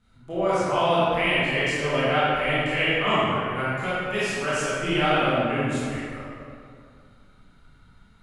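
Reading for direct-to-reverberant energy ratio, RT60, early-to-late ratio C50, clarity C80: -11.5 dB, 2.4 s, -5.5 dB, -2.5 dB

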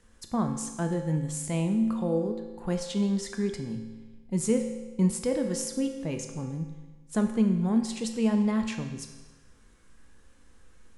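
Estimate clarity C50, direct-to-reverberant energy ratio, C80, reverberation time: 7.0 dB, 4.0 dB, 8.5 dB, 1.3 s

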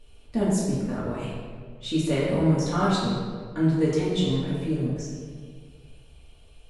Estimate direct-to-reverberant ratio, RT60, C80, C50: -8.5 dB, 1.9 s, 1.5 dB, -1.0 dB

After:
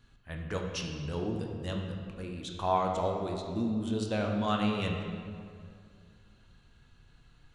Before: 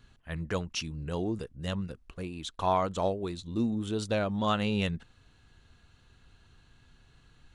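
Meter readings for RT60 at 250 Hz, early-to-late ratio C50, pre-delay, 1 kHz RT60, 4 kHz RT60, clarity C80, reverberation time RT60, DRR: 2.5 s, 3.0 dB, 8 ms, 2.1 s, 1.4 s, 4.5 dB, 2.2 s, 1.0 dB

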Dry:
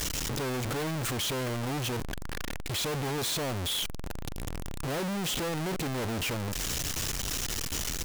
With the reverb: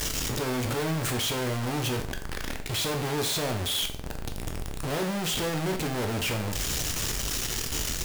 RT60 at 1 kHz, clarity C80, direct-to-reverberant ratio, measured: 0.50 s, 14.0 dB, 4.5 dB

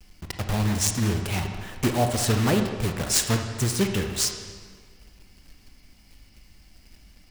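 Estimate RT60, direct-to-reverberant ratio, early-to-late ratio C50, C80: 1.8 s, 4.5 dB, 6.0 dB, 7.5 dB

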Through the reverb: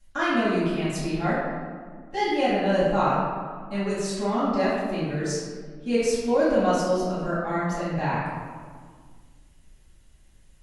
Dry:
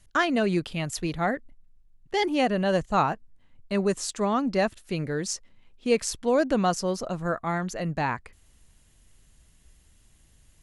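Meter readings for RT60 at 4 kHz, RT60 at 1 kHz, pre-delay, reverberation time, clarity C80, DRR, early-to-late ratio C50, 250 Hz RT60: 0.95 s, 1.7 s, 4 ms, 1.8 s, 1.0 dB, -13.5 dB, -1.5 dB, 2.3 s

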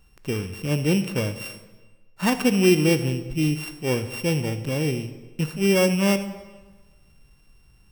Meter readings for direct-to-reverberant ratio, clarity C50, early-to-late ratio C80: 9.5 dB, 11.5 dB, 13.0 dB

